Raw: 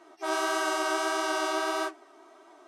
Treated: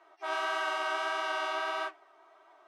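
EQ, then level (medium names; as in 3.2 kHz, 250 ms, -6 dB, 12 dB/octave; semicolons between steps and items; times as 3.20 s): dynamic bell 2.8 kHz, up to +4 dB, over -44 dBFS, Q 1.1; three-band isolator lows -24 dB, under 480 Hz, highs -14 dB, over 3.7 kHz; -3.0 dB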